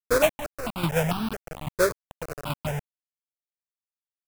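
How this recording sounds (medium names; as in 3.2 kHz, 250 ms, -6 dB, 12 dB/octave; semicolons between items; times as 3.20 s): aliases and images of a low sample rate 2 kHz, jitter 20%; chopped level 1.2 Hz, depth 65%, duty 35%; a quantiser's noise floor 6-bit, dither none; notches that jump at a steady rate 4.5 Hz 780–2000 Hz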